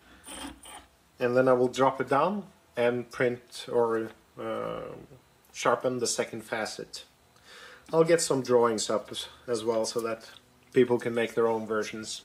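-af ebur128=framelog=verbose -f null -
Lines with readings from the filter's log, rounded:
Integrated loudness:
  I:         -27.9 LUFS
  Threshold: -39.2 LUFS
Loudness range:
  LRA:         5.1 LU
  Threshold: -49.2 LUFS
  LRA low:   -32.5 LUFS
  LRA high:  -27.5 LUFS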